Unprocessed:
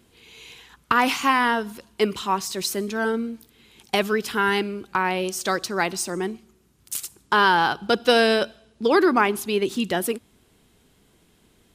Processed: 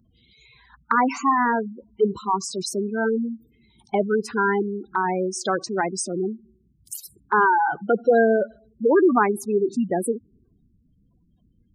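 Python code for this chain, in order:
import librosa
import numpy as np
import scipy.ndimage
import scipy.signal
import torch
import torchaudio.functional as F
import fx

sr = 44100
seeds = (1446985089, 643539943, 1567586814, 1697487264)

y = fx.spec_gate(x, sr, threshold_db=-10, keep='strong')
y = fx.env_phaser(y, sr, low_hz=390.0, high_hz=3300.0, full_db=-25.0)
y = y * librosa.db_to_amplitude(2.5)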